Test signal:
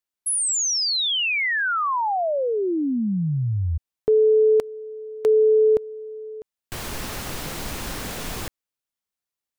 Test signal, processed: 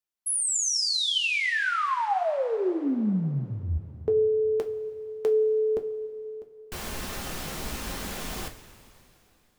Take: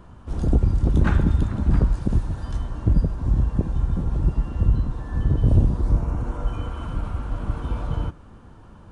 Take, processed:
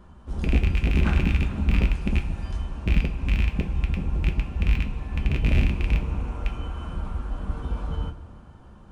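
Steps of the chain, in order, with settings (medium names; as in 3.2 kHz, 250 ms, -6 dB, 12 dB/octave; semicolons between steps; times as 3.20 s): rattle on loud lows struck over -16 dBFS, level -14 dBFS; two-slope reverb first 0.24 s, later 3.1 s, from -18 dB, DRR 3.5 dB; trim -5 dB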